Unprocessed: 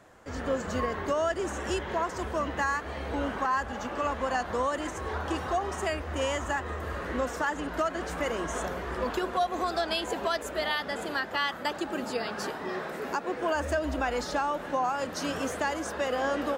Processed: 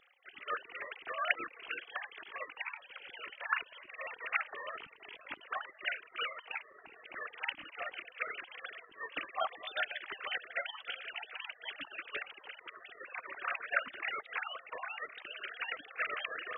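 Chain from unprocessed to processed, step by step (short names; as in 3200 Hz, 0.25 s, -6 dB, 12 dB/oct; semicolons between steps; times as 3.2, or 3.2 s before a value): sine-wave speech; spectral gate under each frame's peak -20 dB weak; gain +9 dB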